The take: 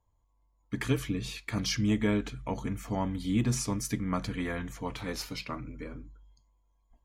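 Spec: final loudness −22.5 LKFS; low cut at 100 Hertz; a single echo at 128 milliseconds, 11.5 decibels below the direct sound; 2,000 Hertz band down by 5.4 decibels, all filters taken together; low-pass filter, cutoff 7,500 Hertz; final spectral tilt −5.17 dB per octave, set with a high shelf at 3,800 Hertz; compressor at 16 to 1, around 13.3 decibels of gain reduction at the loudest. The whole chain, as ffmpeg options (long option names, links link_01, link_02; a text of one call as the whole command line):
ffmpeg -i in.wav -af "highpass=100,lowpass=7500,equalizer=frequency=2000:width_type=o:gain=-5.5,highshelf=frequency=3800:gain=-4,acompressor=threshold=-36dB:ratio=16,aecho=1:1:128:0.266,volume=19.5dB" out.wav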